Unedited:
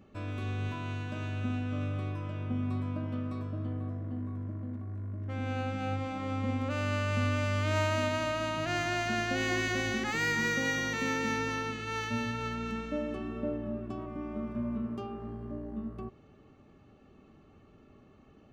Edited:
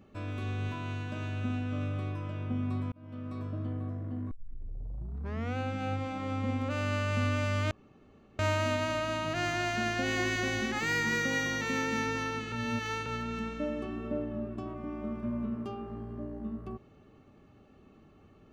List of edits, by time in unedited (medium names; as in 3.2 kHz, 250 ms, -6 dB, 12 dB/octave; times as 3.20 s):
2.92–3.46 s: fade in
4.31 s: tape start 1.26 s
7.71 s: insert room tone 0.68 s
11.84–12.38 s: reverse